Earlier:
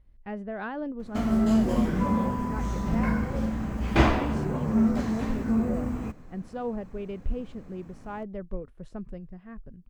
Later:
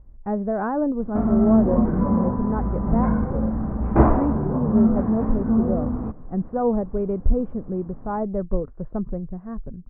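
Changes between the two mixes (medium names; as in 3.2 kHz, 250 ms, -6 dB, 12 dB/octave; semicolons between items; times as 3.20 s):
speech +11.0 dB; first sound +5.0 dB; master: add low-pass 1.2 kHz 24 dB/octave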